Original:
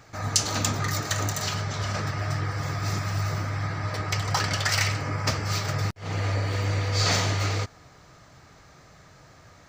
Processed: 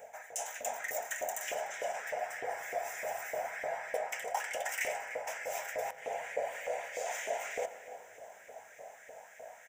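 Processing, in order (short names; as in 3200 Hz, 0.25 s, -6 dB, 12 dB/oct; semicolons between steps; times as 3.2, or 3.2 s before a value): HPF 260 Hz 12 dB/oct; band shelf 2200 Hz -10 dB 2.9 oct; reverse; compressor 6:1, threshold -41 dBFS, peak gain reduction 19 dB; reverse; hum 50 Hz, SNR 11 dB; fixed phaser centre 1200 Hz, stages 6; outdoor echo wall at 51 m, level -15 dB; LFO high-pass saw up 3.3 Hz 460–2100 Hz; on a send at -13 dB: reverb RT60 3.5 s, pre-delay 3 ms; on the sum: gain +8 dB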